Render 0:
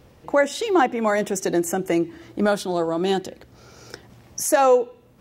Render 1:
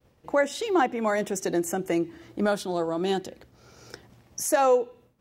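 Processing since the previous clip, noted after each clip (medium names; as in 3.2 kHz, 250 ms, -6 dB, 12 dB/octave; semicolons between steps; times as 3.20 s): expander -45 dBFS; trim -4.5 dB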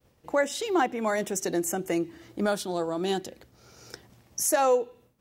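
treble shelf 4.7 kHz +6.5 dB; trim -2 dB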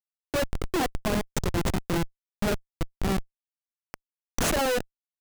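Schmitt trigger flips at -23.5 dBFS; trim +4.5 dB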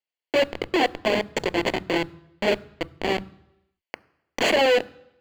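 reverberation RT60 0.85 s, pre-delay 3 ms, DRR 19.5 dB; trim -2.5 dB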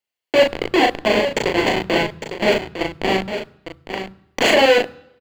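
doubling 37 ms -3.5 dB; delay 855 ms -9.5 dB; trim +4.5 dB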